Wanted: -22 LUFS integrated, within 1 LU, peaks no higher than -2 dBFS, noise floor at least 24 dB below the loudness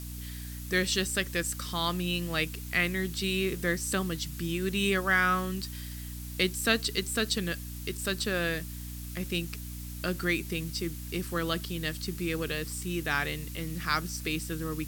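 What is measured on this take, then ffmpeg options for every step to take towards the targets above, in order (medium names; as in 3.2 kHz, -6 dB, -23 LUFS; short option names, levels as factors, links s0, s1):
hum 60 Hz; highest harmonic 300 Hz; hum level -38 dBFS; noise floor -40 dBFS; noise floor target -55 dBFS; loudness -30.5 LUFS; peak level -8.5 dBFS; loudness target -22.0 LUFS
-> -af "bandreject=f=60:t=h:w=4,bandreject=f=120:t=h:w=4,bandreject=f=180:t=h:w=4,bandreject=f=240:t=h:w=4,bandreject=f=300:t=h:w=4"
-af "afftdn=nr=15:nf=-40"
-af "volume=2.66,alimiter=limit=0.794:level=0:latency=1"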